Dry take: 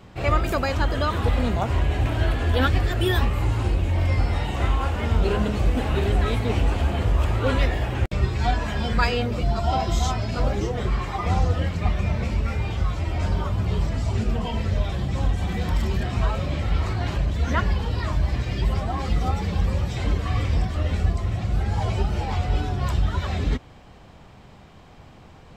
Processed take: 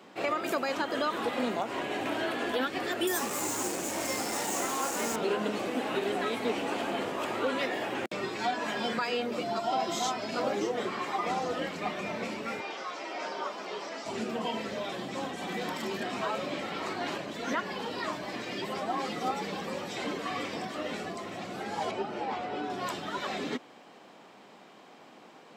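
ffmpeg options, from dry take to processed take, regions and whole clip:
ffmpeg -i in.wav -filter_complex "[0:a]asettb=1/sr,asplit=3[link_01][link_02][link_03];[link_01]atrim=end=3.074[link_04];[link_02]atrim=start=3.07:end=5.16,asetpts=PTS-STARTPTS,afade=type=in:duration=0.004:curve=qsin,afade=type=out:start_time=2.086:duration=0.004:curve=qsin,highshelf=frequency=5000:width_type=q:width=3:gain=11.5,acrusher=bits=4:mix=0:aa=0.5[link_05];[link_03]atrim=start=5.156[link_06];[link_04][link_05]acrossfade=duration=0.004:curve1=hsin:curve2=qsin[link_07];[link_07][link_06]acrossfade=duration=0.004:curve1=qsin:curve2=hsin,asettb=1/sr,asplit=3[link_08][link_09][link_10];[link_08]atrim=end=12.604[link_11];[link_09]atrim=start=12.6:end=14.06,asetpts=PTS-STARTPTS,afade=type=in:duration=0.004:curve=qsin,afade=type=out:start_time=1.456:duration=0.004:curve=qsin,highpass=420,acrossover=split=2800[link_12][link_13];[link_13]acompressor=threshold=-60dB:ratio=4:attack=1:release=60[link_14];[link_12][link_14]amix=inputs=2:normalize=0,equalizer=frequency=5500:width=1.3:gain=14.5[link_15];[link_10]atrim=start=14.056[link_16];[link_11][link_15]acrossfade=duration=0.004:curve1=hsin:curve2=qsin[link_17];[link_17][link_16]acrossfade=duration=0.004:curve1=qsin:curve2=hsin,asettb=1/sr,asplit=3[link_18][link_19][link_20];[link_18]atrim=end=21.914[link_21];[link_19]atrim=start=21.91:end=22.7,asetpts=PTS-STARTPTS,afade=type=in:duration=0.004:curve=qsin,afade=type=out:start_time=0.786:duration=0.004:curve=qsin,lowpass=frequency=2000:poles=1,equalizer=frequency=180:width_type=o:width=0.33:gain=-4[link_22];[link_20]atrim=start=22.696[link_23];[link_21][link_22]acrossfade=duration=0.004:curve1=hsin:curve2=qsin[link_24];[link_24][link_23]acrossfade=duration=0.004:curve1=qsin:curve2=hsin,highpass=frequency=240:width=0.5412,highpass=frequency=240:width=1.3066,alimiter=limit=-18.5dB:level=0:latency=1:release=172,volume=-1.5dB" out.wav

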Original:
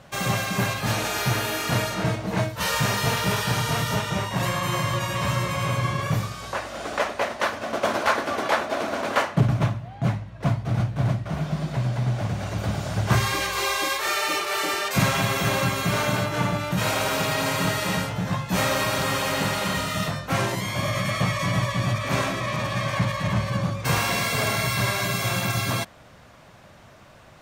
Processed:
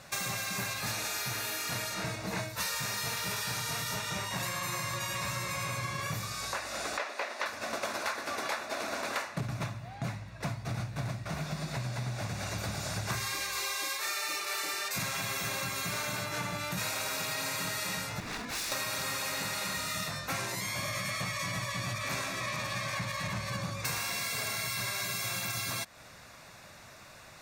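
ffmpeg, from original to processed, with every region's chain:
ffmpeg -i in.wav -filter_complex "[0:a]asettb=1/sr,asplit=3[link_01][link_02][link_03];[link_01]atrim=end=6.974[link_04];[link_02]atrim=start=6.97:end=7.46,asetpts=PTS-STARTPTS,afade=type=in:duration=0.004:curve=qsin,afade=type=out:start_time=0.486:duration=0.004:curve=qsin,highpass=frequency=270:width=0.5412,highpass=frequency=270:width=1.3066,acrossover=split=5400[link_05][link_06];[link_06]acompressor=threshold=-55dB:ratio=4:attack=1:release=60[link_07];[link_05][link_07]amix=inputs=2:normalize=0[link_08];[link_03]atrim=start=7.456[link_09];[link_04][link_08]acrossfade=duration=0.004:curve1=hsin:curve2=qsin[link_10];[link_10][link_09]acrossfade=duration=0.004:curve1=qsin:curve2=hsin,asettb=1/sr,asplit=3[link_11][link_12][link_13];[link_11]atrim=end=18.204[link_14];[link_12]atrim=start=18.2:end=18.72,asetpts=PTS-STARTPTS,afade=type=in:duration=0.004:curve=qsin,afade=type=out:start_time=0.516:duration=0.004:curve=qsin,lowpass=frequency=2600:poles=1,aeval=exprs='0.0335*(abs(mod(val(0)/0.0335+3,4)-2)-1)':channel_layout=same,afreqshift=-370[link_15];[link_13]atrim=start=18.716[link_16];[link_14][link_15]acrossfade=duration=0.004:curve1=hsin:curve2=qsin[link_17];[link_17][link_16]acrossfade=duration=0.004:curve1=qsin:curve2=hsin,tiltshelf=frequency=1500:gain=-6.5,bandreject=frequency=3100:width=5.2,acompressor=threshold=-32dB:ratio=6" out.wav

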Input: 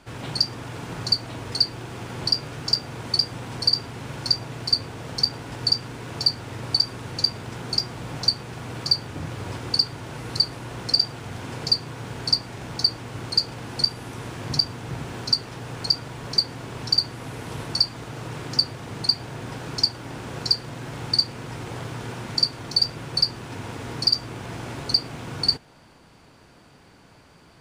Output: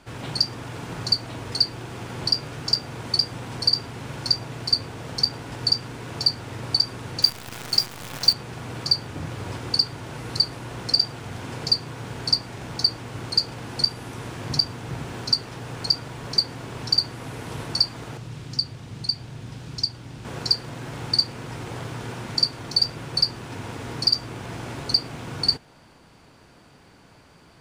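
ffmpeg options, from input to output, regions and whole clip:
ffmpeg -i in.wav -filter_complex "[0:a]asettb=1/sr,asplit=3[link_01][link_02][link_03];[link_01]atrim=end=7.224[link_04];[link_02]atrim=start=7.22:end=8.33,asetpts=PTS-STARTPTS,afade=type=in:duration=0.004:curve=qsin,afade=type=out:start_time=1.106:duration=0.004:curve=qsin,highpass=56,tiltshelf=frequency=870:gain=-3.5,acrusher=bits=6:dc=4:mix=0:aa=0.000001[link_05];[link_03]atrim=start=8.326[link_06];[link_04][link_05]acrossfade=duration=0.004:curve1=hsin:curve2=qsin[link_07];[link_07][link_06]acrossfade=duration=0.004:curve1=qsin:curve2=hsin,asettb=1/sr,asplit=3[link_08][link_09][link_10];[link_08]atrim=end=18.174[link_11];[link_09]atrim=start=18.17:end=20.25,asetpts=PTS-STARTPTS,afade=type=in:duration=0.004:curve=qsin,afade=type=out:start_time=2.076:duration=0.004:curve=qsin,highshelf=frequency=6200:gain=-9,acrossover=split=220|3000[link_12][link_13][link_14];[link_13]acompressor=threshold=-51dB:ratio=2.5:attack=3.2:release=140:knee=2.83:detection=peak[link_15];[link_12][link_15][link_14]amix=inputs=3:normalize=0[link_16];[link_10]atrim=start=20.246[link_17];[link_11][link_16]acrossfade=duration=0.004:curve1=hsin:curve2=qsin[link_18];[link_18][link_17]acrossfade=duration=0.004:curve1=qsin:curve2=hsin" out.wav

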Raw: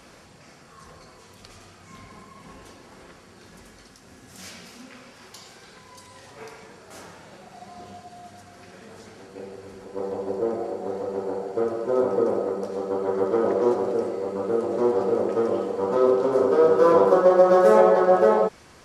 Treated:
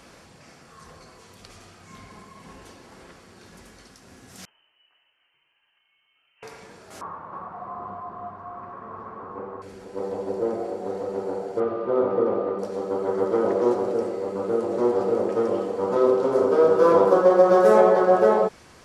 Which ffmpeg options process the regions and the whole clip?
ffmpeg -i in.wav -filter_complex "[0:a]asettb=1/sr,asplit=3[link_01][link_02][link_03];[link_01]atrim=end=4.454[link_04];[link_02]atrim=start=4.45:end=6.43,asetpts=PTS-STARTPTS,afade=type=in:duration=0.004:curve=qsin,afade=type=out:start_time=1.976:duration=0.004:curve=qsin,agate=range=-22dB:threshold=-38dB:ratio=16:release=100:detection=peak,lowshelf=frequency=190:gain=7,lowpass=frequency=2700:width_type=q:width=0.5098,lowpass=frequency=2700:width_type=q:width=0.6013,lowpass=frequency=2700:width_type=q:width=0.9,lowpass=frequency=2700:width_type=q:width=2.563,afreqshift=-3200[link_05];[link_03]atrim=start=6.426[link_06];[link_04][link_05]acrossfade=duration=0.004:curve1=hsin:curve2=qsin[link_07];[link_07][link_06]acrossfade=duration=0.004:curve1=qsin:curve2=hsin,asettb=1/sr,asplit=3[link_08][link_09][link_10];[link_08]atrim=end=7.014[link_11];[link_09]atrim=start=7.01:end=9.62,asetpts=PTS-STARTPTS,afade=type=in:duration=0.004:curve=qsin,afade=type=out:start_time=2.606:duration=0.004:curve=qsin,lowpass=frequency=1100:width_type=q:width=13,aecho=1:1:314:0.631,atrim=end_sample=115101[link_12];[link_10]atrim=start=9.616[link_13];[link_11][link_12]acrossfade=duration=0.004:curve1=hsin:curve2=qsin[link_14];[link_14][link_13]acrossfade=duration=0.004:curve1=qsin:curve2=hsin,asettb=1/sr,asplit=3[link_15][link_16][link_17];[link_15]atrim=end=11.604[link_18];[link_16]atrim=start=11.6:end=12.59,asetpts=PTS-STARTPTS,afade=type=in:duration=0.004:curve=qsin,afade=type=out:start_time=0.986:duration=0.004:curve=qsin,lowpass=frequency=3600:width=0.5412,lowpass=frequency=3600:width=1.3066,aeval=exprs='val(0)+0.0126*sin(2*PI*1200*n/s)':channel_layout=same[link_19];[link_17]atrim=start=12.586[link_20];[link_18][link_19]acrossfade=duration=0.004:curve1=hsin:curve2=qsin[link_21];[link_21][link_20]acrossfade=duration=0.004:curve1=qsin:curve2=hsin" out.wav

